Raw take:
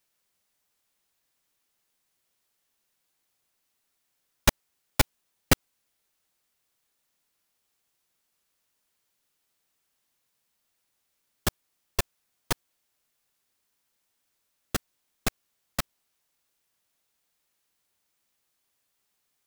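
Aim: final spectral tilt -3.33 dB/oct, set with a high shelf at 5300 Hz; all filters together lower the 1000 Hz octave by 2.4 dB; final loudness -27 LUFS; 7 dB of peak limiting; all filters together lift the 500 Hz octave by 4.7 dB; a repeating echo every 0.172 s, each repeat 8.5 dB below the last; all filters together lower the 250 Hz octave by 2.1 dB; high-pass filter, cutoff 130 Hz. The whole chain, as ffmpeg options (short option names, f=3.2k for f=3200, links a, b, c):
-af "highpass=130,equalizer=f=250:t=o:g=-4.5,equalizer=f=500:t=o:g=8.5,equalizer=f=1k:t=o:g=-5.5,highshelf=f=5.3k:g=-5,alimiter=limit=-11dB:level=0:latency=1,aecho=1:1:172|344|516|688:0.376|0.143|0.0543|0.0206,volume=8.5dB"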